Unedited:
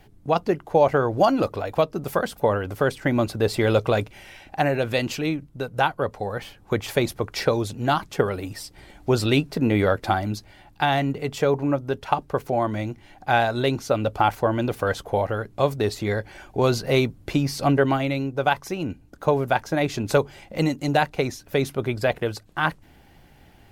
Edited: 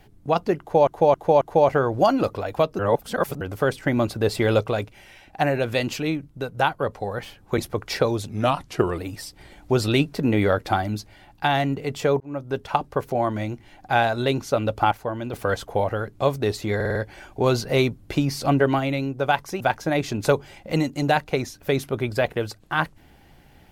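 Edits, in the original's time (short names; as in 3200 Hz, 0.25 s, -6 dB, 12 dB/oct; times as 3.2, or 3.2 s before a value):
0.6–0.87 loop, 4 plays
1.98–2.6 reverse
3.83–4.59 gain -3.5 dB
6.77–7.04 cut
7.75–8.36 speed 88%
11.58–11.94 fade in
14.29–14.71 gain -6.5 dB
16.13 stutter 0.05 s, 5 plays
18.78–19.46 cut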